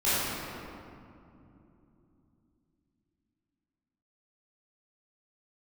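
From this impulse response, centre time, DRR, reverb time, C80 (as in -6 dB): 184 ms, -14.5 dB, 2.9 s, -3.0 dB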